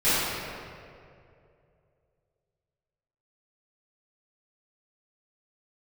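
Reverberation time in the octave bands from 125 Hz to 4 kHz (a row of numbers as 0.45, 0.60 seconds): 3.2, 2.4, 2.8, 2.1, 1.9, 1.4 seconds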